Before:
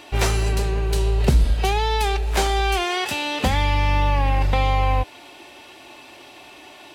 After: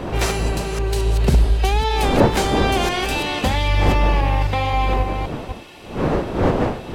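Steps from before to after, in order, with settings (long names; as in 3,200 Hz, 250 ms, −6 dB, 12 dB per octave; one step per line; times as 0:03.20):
delay that plays each chunk backwards 263 ms, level −5.5 dB
wind on the microphone 500 Hz −24 dBFS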